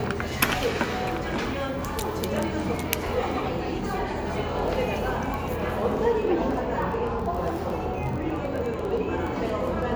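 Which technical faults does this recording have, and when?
crackle 11/s -30 dBFS
1.21–1.94 clipped -22.5 dBFS
5.34 pop

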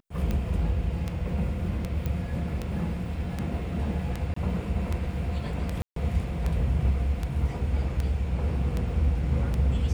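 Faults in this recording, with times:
tick 78 rpm -17 dBFS
2.06 pop -18 dBFS
4.34–4.36 gap 24 ms
5.82–5.96 gap 0.143 s

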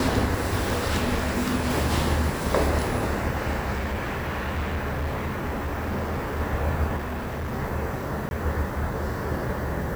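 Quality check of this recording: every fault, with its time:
3.76–6.41 clipped -24 dBFS
6.96–7.54 clipped -27 dBFS
8.29–8.31 gap 21 ms

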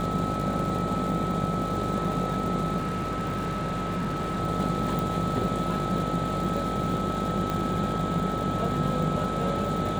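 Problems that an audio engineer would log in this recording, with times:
buzz 50 Hz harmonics 17 -33 dBFS
crackle 170/s -33 dBFS
tone 1300 Hz -31 dBFS
2.77–4.41 clipped -25.5 dBFS
4.99 pop
7.5 pop -16 dBFS

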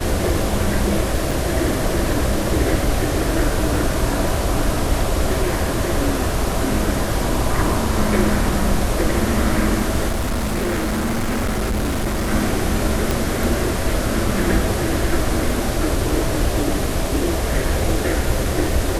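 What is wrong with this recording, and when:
crackle 13/s -26 dBFS
1.31 gap 4.5 ms
10.08–12.31 clipped -17.5 dBFS
13.11 pop

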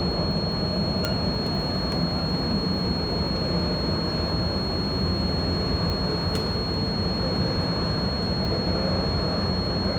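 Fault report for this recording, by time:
tone 4300 Hz -30 dBFS
1.05 pop -9 dBFS
5.9 pop -16 dBFS
8.45 gap 2.2 ms

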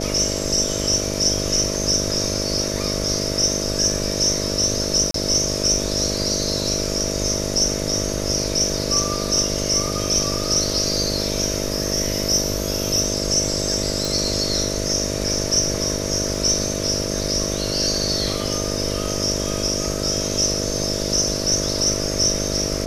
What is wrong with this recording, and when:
buzz 50 Hz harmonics 13 -26 dBFS
5.11–5.14 gap 33 ms
14.05 pop
16.35 gap 2.1 ms

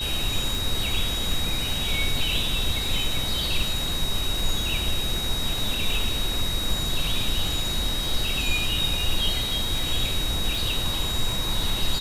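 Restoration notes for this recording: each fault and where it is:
tick 78 rpm
tone 3800 Hz -28 dBFS

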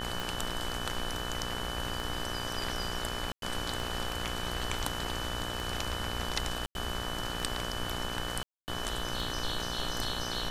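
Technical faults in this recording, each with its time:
buzz 60 Hz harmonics 30 -39 dBFS
tick 33 1/3 rpm
tone 3000 Hz -40 dBFS
3.32–3.42 gap 0.102 s
6.66–6.75 gap 91 ms
8.43–8.68 gap 0.249 s

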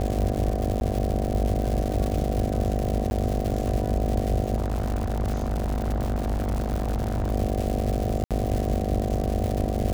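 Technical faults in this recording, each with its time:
buzz 50 Hz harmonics 15 -29 dBFS
crackle 240/s -27 dBFS
0.8–0.81 gap 11 ms
3.1–3.11 gap
4.56–7.32 clipped -21.5 dBFS
8.24–8.31 gap 67 ms

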